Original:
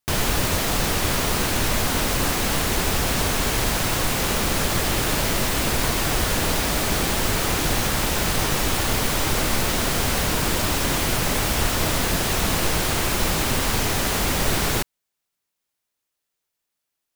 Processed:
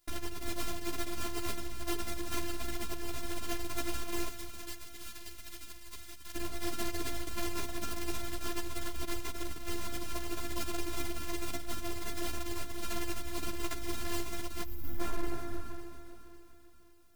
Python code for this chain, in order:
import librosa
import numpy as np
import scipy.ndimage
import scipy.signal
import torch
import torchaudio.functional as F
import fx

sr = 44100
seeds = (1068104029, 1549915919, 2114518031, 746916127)

y = fx.low_shelf(x, sr, hz=320.0, db=9.5)
y = fx.rev_plate(y, sr, seeds[0], rt60_s=2.3, hf_ratio=0.5, predelay_ms=0, drr_db=12.5)
y = fx.over_compress(y, sr, threshold_db=-25.0, ratio=-0.5)
y = fx.tone_stack(y, sr, knobs='5-5-5', at=(4.28, 6.35))
y = fx.echo_heads(y, sr, ms=135, heads='all three', feedback_pct=60, wet_db=-20)
y = np.clip(y, -10.0 ** (-24.0 / 20.0), 10.0 ** (-24.0 / 20.0))
y = fx.spec_box(y, sr, start_s=14.64, length_s=0.36, low_hz=230.0, high_hz=12000.0, gain_db=-17)
y = fx.robotise(y, sr, hz=345.0)
y = fx.ensemble(y, sr)